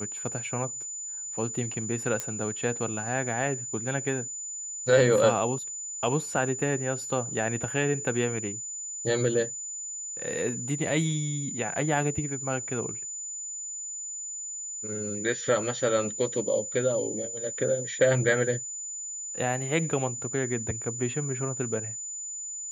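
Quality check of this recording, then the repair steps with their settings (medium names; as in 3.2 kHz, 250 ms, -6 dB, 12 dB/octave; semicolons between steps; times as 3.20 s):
whine 7 kHz -34 dBFS
2.20 s: pop -14 dBFS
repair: de-click; band-stop 7 kHz, Q 30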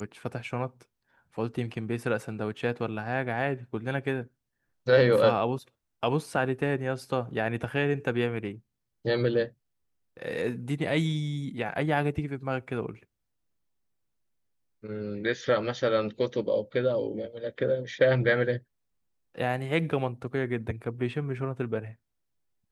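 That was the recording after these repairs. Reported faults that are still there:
nothing left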